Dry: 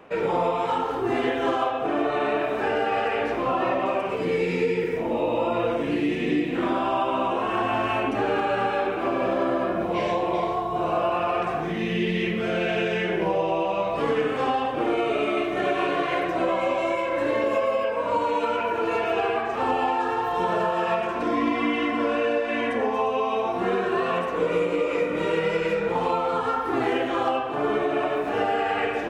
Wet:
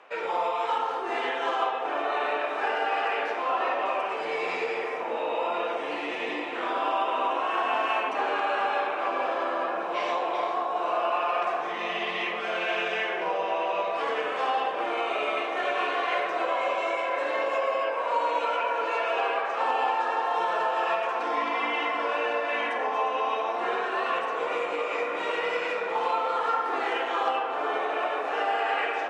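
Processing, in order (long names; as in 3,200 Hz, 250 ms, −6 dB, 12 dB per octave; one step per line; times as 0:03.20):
band-pass filter 720–7,300 Hz
delay with a low-pass on its return 484 ms, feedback 83%, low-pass 1,400 Hz, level −9.5 dB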